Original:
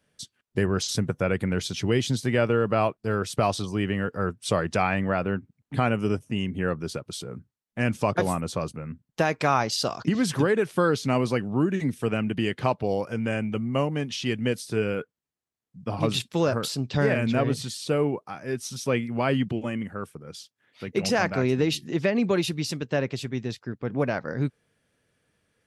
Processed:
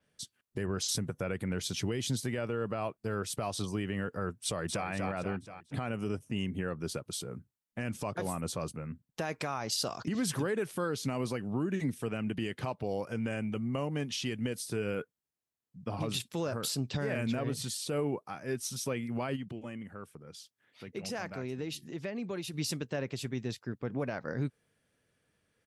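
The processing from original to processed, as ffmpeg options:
ffmpeg -i in.wav -filter_complex "[0:a]asplit=2[link_01][link_02];[link_02]afade=type=in:start_time=4.44:duration=0.01,afade=type=out:start_time=4.88:duration=0.01,aecho=0:1:240|480|720|960|1200:0.473151|0.212918|0.0958131|0.0431159|0.0194022[link_03];[link_01][link_03]amix=inputs=2:normalize=0,asplit=3[link_04][link_05][link_06];[link_04]afade=type=out:start_time=19.35:duration=0.02[link_07];[link_05]acompressor=threshold=-47dB:ratio=1.5:attack=3.2:release=140:knee=1:detection=peak,afade=type=in:start_time=19.35:duration=0.02,afade=type=out:start_time=22.53:duration=0.02[link_08];[link_06]afade=type=in:start_time=22.53:duration=0.02[link_09];[link_07][link_08][link_09]amix=inputs=3:normalize=0,alimiter=limit=-19dB:level=0:latency=1:release=114,adynamicequalizer=threshold=0.00316:dfrequency=7200:dqfactor=0.7:tfrequency=7200:tqfactor=0.7:attack=5:release=100:ratio=0.375:range=4:mode=boostabove:tftype=highshelf,volume=-4.5dB" out.wav

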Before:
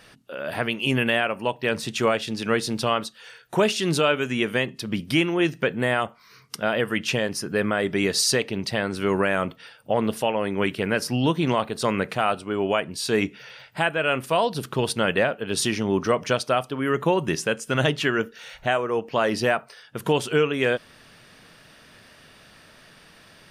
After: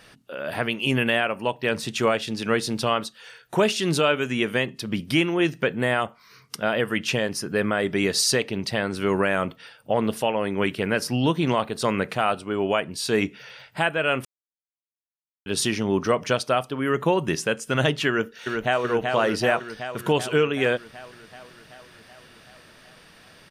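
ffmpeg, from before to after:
ffmpeg -i in.wav -filter_complex "[0:a]asplit=2[link_01][link_02];[link_02]afade=type=in:start_time=18.08:duration=0.01,afade=type=out:start_time=18.83:duration=0.01,aecho=0:1:380|760|1140|1520|1900|2280|2660|3040|3420|3800|4180|4560:0.630957|0.44167|0.309169|0.216418|0.151493|0.106045|0.0742315|0.0519621|0.0363734|0.0254614|0.017823|0.0124761[link_03];[link_01][link_03]amix=inputs=2:normalize=0,asplit=3[link_04][link_05][link_06];[link_04]atrim=end=14.25,asetpts=PTS-STARTPTS,afade=type=out:start_time=14.246:duration=0.004:curve=hsin[link_07];[link_05]atrim=start=14.25:end=15.46,asetpts=PTS-STARTPTS,volume=0[link_08];[link_06]atrim=start=15.46,asetpts=PTS-STARTPTS,afade=type=in:duration=0.004:curve=hsin[link_09];[link_07][link_08][link_09]concat=n=3:v=0:a=1" out.wav

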